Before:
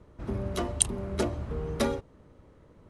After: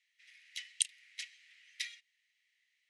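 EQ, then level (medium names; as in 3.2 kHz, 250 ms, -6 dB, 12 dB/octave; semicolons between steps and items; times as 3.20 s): Chebyshev high-pass 1.9 kHz, order 6; distance through air 71 m; +1.0 dB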